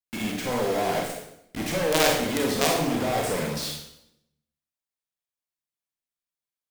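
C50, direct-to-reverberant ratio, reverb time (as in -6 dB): 2.0 dB, -1.5 dB, 0.75 s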